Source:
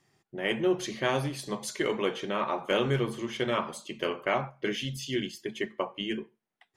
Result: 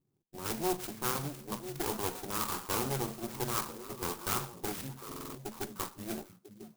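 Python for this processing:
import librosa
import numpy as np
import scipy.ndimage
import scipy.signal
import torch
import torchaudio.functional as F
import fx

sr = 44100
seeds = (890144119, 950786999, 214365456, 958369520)

y = fx.lower_of_two(x, sr, delay_ms=0.8)
y = fx.low_shelf(y, sr, hz=120.0, db=-8.0)
y = fx.echo_stepped(y, sr, ms=497, hz=160.0, octaves=1.4, feedback_pct=70, wet_db=-7.0)
y = fx.env_lowpass(y, sr, base_hz=440.0, full_db=-27.5)
y = fx.buffer_glitch(y, sr, at_s=(5.07,), block=2048, repeats=5)
y = fx.clock_jitter(y, sr, seeds[0], jitter_ms=0.12)
y = y * librosa.db_to_amplitude(-2.5)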